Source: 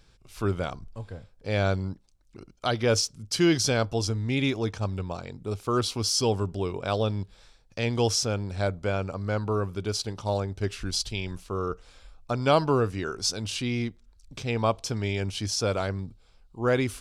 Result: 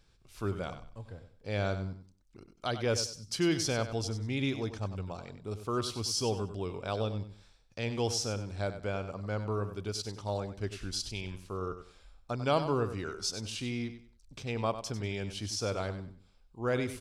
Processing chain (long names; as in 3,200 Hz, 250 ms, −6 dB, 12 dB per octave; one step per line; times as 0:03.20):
repeating echo 96 ms, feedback 26%, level −11 dB
level −7 dB